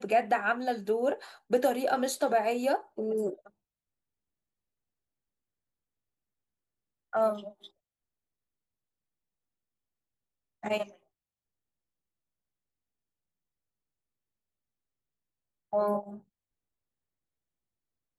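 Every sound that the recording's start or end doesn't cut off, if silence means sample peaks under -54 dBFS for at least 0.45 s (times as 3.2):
7.13–7.68
10.63–10.96
15.73–16.21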